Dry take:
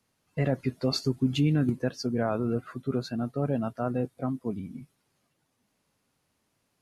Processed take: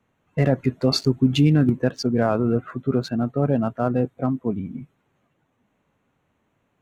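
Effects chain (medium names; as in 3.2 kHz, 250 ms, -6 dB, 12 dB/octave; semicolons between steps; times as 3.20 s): local Wiener filter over 9 samples; trim +7.5 dB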